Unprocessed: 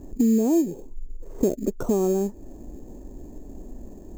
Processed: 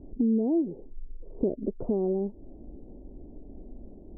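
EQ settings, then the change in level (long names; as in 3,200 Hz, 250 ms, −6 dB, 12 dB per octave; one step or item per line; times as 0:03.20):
inverse Chebyshev low-pass filter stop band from 2,000 Hz, stop band 50 dB
−5.0 dB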